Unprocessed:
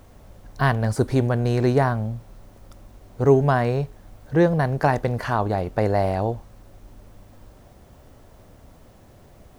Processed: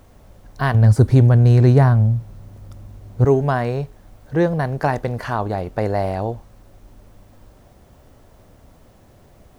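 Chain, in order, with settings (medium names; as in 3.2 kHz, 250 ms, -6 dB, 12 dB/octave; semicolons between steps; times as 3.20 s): 0.74–3.25 s: peaking EQ 100 Hz +13 dB 1.8 oct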